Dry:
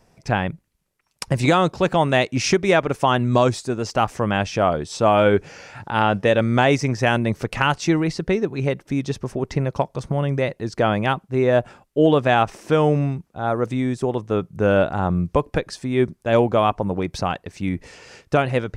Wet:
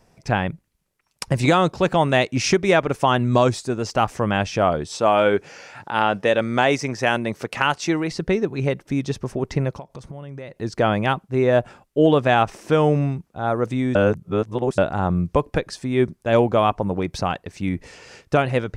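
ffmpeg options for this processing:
ffmpeg -i in.wav -filter_complex "[0:a]asettb=1/sr,asplit=3[link_01][link_02][link_03];[link_01]atrim=end=4.964[link_04];[link_02]atrim=start=4.96:end=8.11,asetpts=PTS-STARTPTS,afade=type=in:duration=0.004:curve=qsin,afade=type=out:start_time=3.146:duration=0.004:curve=qsin,highpass=frequency=290:poles=1[link_05];[link_03]atrim=start=8.106[link_06];[link_04][link_05]acrossfade=duration=0.004:curve1=hsin:curve2=qsin[link_07];[link_07][link_06]acrossfade=duration=0.004:curve1=qsin:curve2=hsin,asettb=1/sr,asplit=3[link_08][link_09][link_10];[link_08]atrim=end=9.734[link_11];[link_09]atrim=start=9.73:end=10.6,asetpts=PTS-STARTPTS,afade=type=in:duration=0.004:curve=qsin,afade=type=out:start_time=0.866:duration=0.004:curve=qsin,acompressor=threshold=-34dB:ratio=4:attack=3.2:release=140:knee=1:detection=peak[link_12];[link_10]atrim=start=10.596[link_13];[link_11][link_12]acrossfade=duration=0.004:curve1=hsin:curve2=qsin[link_14];[link_14][link_13]acrossfade=duration=0.004:curve1=qsin:curve2=hsin,asplit=3[link_15][link_16][link_17];[link_15]atrim=end=13.952[link_18];[link_16]atrim=start=13.948:end=14.782,asetpts=PTS-STARTPTS,areverse[link_19];[link_17]atrim=start=14.778[link_20];[link_18][link_19]acrossfade=duration=0.004:curve1=hsin:curve2=hsin[link_21];[link_21][link_20]acrossfade=duration=0.004:curve1=hsin:curve2=hsin" out.wav

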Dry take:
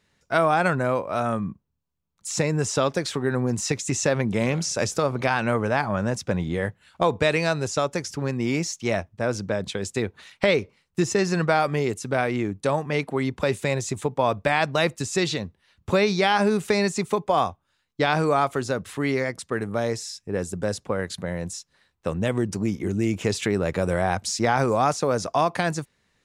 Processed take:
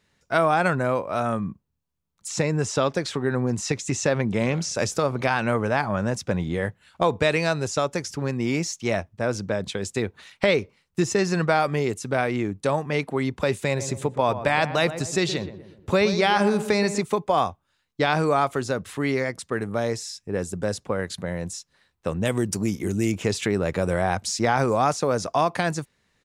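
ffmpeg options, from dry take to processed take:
ffmpeg -i in.wav -filter_complex "[0:a]asettb=1/sr,asplit=3[link_01][link_02][link_03];[link_01]atrim=end=2.284[link_04];[link_02]atrim=start=2.28:end=4.75,asetpts=PTS-STARTPTS,afade=type=in:duration=0.004:curve=qsin,afade=type=out:start_time=2.466:duration=0.004:curve=qsin,highshelf=frequency=11000:gain=-11.5[link_05];[link_03]atrim=start=4.746[link_06];[link_04][link_05]acrossfade=duration=0.004:curve1=hsin:curve2=qsin[link_07];[link_07][link_06]acrossfade=duration=0.004:curve1=qsin:curve2=hsin,asplit=3[link_08][link_09][link_10];[link_08]afade=type=out:start_time=13.78:duration=0.02[link_11];[link_09]asplit=2[link_12][link_13];[link_13]adelay=122,lowpass=frequency=1300:poles=1,volume=-10.5dB,asplit=2[link_14][link_15];[link_15]adelay=122,lowpass=frequency=1300:poles=1,volume=0.49,asplit=2[link_16][link_17];[link_17]adelay=122,lowpass=frequency=1300:poles=1,volume=0.49,asplit=2[link_18][link_19];[link_19]adelay=122,lowpass=frequency=1300:poles=1,volume=0.49,asplit=2[link_20][link_21];[link_21]adelay=122,lowpass=frequency=1300:poles=1,volume=0.49[link_22];[link_12][link_14][link_16][link_18][link_20][link_22]amix=inputs=6:normalize=0,afade=type=in:start_time=13.78:duration=0.02,afade=type=out:start_time=17.02:duration=0.02[link_23];[link_10]afade=type=in:start_time=17.02:duration=0.02[link_24];[link_11][link_23][link_24]amix=inputs=3:normalize=0,asettb=1/sr,asplit=3[link_25][link_26][link_27];[link_25]atrim=end=22.254[link_28];[link_26]atrim=start=22.25:end=23.12,asetpts=PTS-STARTPTS,afade=type=in:duration=0.004:curve=qsin,afade=type=out:start_time=0.866:duration=0.004:curve=qsin,aemphasis=mode=production:type=50kf[link_29];[link_27]atrim=start=23.116[link_30];[link_28][link_29]acrossfade=duration=0.004:curve1=hsin:curve2=qsin[link_31];[link_31][link_30]acrossfade=duration=0.004:curve1=qsin:curve2=hsin" out.wav

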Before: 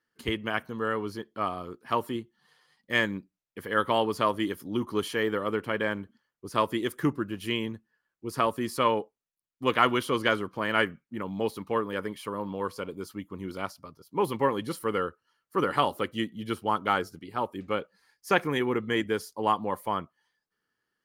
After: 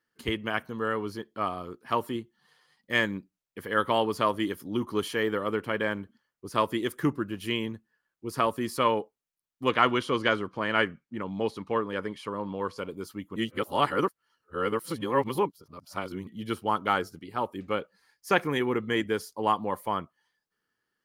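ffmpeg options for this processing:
ffmpeg -i in.wav -filter_complex "[0:a]asettb=1/sr,asplit=3[link_01][link_02][link_03];[link_01]atrim=end=9.694[link_04];[link_02]atrim=start=9.69:end=12.78,asetpts=PTS-STARTPTS,afade=type=in:duration=0.004:curve=qsin,afade=type=out:start_time=3.086:duration=0.004:curve=qsin,lowpass=7100[link_05];[link_03]atrim=start=12.776[link_06];[link_04][link_05]acrossfade=duration=0.004:curve1=hsin:curve2=qsin[link_07];[link_07][link_06]acrossfade=duration=0.004:curve1=qsin:curve2=hsin,asplit=3[link_08][link_09][link_10];[link_08]atrim=end=13.362[link_11];[link_09]atrim=start=13.358:end=16.272,asetpts=PTS-STARTPTS,areverse[link_12];[link_10]atrim=start=16.268[link_13];[link_11][link_12]acrossfade=duration=0.004:curve1=hsin:curve2=hsin[link_14];[link_14][link_13]acrossfade=duration=0.004:curve1=hsin:curve2=hsin" out.wav

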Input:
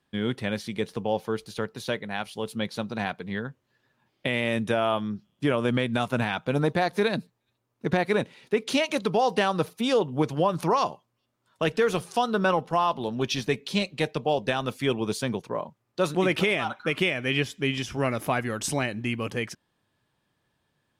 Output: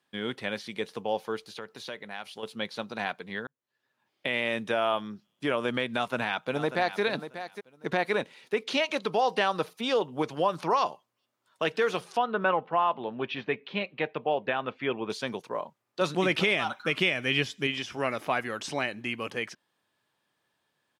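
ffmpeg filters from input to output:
ffmpeg -i in.wav -filter_complex "[0:a]asettb=1/sr,asplit=3[link_01][link_02][link_03];[link_01]atrim=end=1.474[link_04];[link_02]atrim=start=1.47:end=2.43,asetpts=PTS-STARTPTS,afade=type=in:duration=0.004:curve=qsin,afade=type=out:start_time=0.956:duration=0.004:curve=qsin,acompressor=threshold=-34dB:ratio=2.5:attack=3.2:release=140:knee=1:detection=peak[link_05];[link_03]atrim=start=2.426[link_06];[link_04][link_05]acrossfade=duration=0.004:curve1=hsin:curve2=qsin[link_07];[link_07][link_06]acrossfade=duration=0.004:curve1=qsin:curve2=hsin,asplit=2[link_08][link_09];[link_09]afade=type=in:start_time=5.96:duration=0.01,afade=type=out:start_time=7.01:duration=0.01,aecho=0:1:590|1180:0.266073|0.0399109[link_10];[link_08][link_10]amix=inputs=2:normalize=0,asettb=1/sr,asplit=3[link_11][link_12][link_13];[link_11]atrim=end=12.174[link_14];[link_12]atrim=start=12.17:end=15.1,asetpts=PTS-STARTPTS,afade=type=in:duration=0.004:curve=qsin,afade=type=out:start_time=2.926:duration=0.004:curve=qsin,lowpass=frequency=2800:width=0.5412,lowpass=frequency=2800:width=1.3066[link_15];[link_13]atrim=start=15.096[link_16];[link_14][link_15]acrossfade=duration=0.004:curve1=hsin:curve2=qsin[link_17];[link_17][link_16]acrossfade=duration=0.004:curve1=qsin:curve2=hsin,asettb=1/sr,asplit=3[link_18][link_19][link_20];[link_18]atrim=end=16.014[link_21];[link_19]atrim=start=16.01:end=17.67,asetpts=PTS-STARTPTS,afade=type=in:duration=0.004:curve=qsin,afade=type=out:start_time=1.656:duration=0.004:curve=qsin,bass=frequency=250:gain=8,treble=frequency=4000:gain=7[link_22];[link_20]atrim=start=17.666[link_23];[link_21][link_22]acrossfade=duration=0.004:curve1=hsin:curve2=qsin[link_24];[link_24][link_23]acrossfade=duration=0.004:curve1=qsin:curve2=hsin,asplit=2[link_25][link_26];[link_25]atrim=end=3.47,asetpts=PTS-STARTPTS,afade=type=out:start_time=3.466:duration=0.004:curve=hsin[link_27];[link_26]atrim=start=3.47,asetpts=PTS-STARTPTS,afade=type=in:duration=0.88[link_28];[link_27][link_28]concat=n=2:v=0:a=1,acrossover=split=5400[link_29][link_30];[link_30]acompressor=threshold=-55dB:ratio=4:attack=1:release=60[link_31];[link_29][link_31]amix=inputs=2:normalize=0,highpass=frequency=510:poles=1" out.wav

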